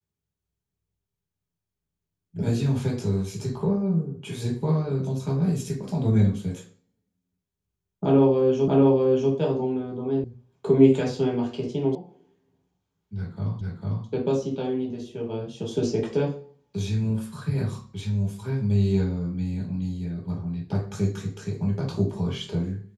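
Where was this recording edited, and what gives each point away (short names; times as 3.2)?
8.68 repeat of the last 0.64 s
10.24 sound cut off
11.95 sound cut off
13.61 repeat of the last 0.45 s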